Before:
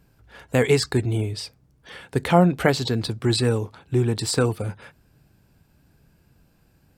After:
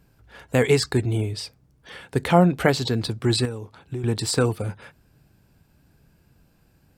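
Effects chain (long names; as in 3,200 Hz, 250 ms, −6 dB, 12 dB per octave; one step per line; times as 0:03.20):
0:03.45–0:04.04: downward compressor 3 to 1, threshold −31 dBFS, peak gain reduction 11.5 dB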